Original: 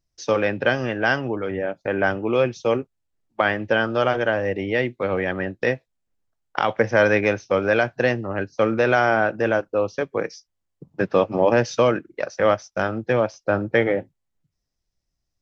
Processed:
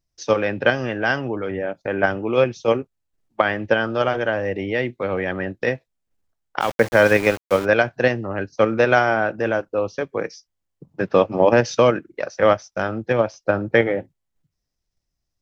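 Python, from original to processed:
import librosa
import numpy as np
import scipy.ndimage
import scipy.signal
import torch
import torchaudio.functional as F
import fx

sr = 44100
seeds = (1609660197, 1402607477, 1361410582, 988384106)

p1 = fx.level_steps(x, sr, step_db=18)
p2 = x + (p1 * 10.0 ** (-0.5 / 20.0))
p3 = fx.sample_gate(p2, sr, floor_db=-25.0, at=(6.6, 7.64), fade=0.02)
y = p3 * 10.0 ** (-2.0 / 20.0)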